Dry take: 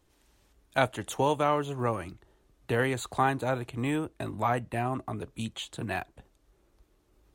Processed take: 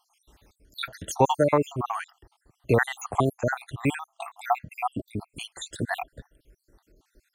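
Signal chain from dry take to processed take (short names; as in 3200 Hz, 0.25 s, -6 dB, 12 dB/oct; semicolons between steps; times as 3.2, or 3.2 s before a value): random spectral dropouts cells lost 69%; gain +8.5 dB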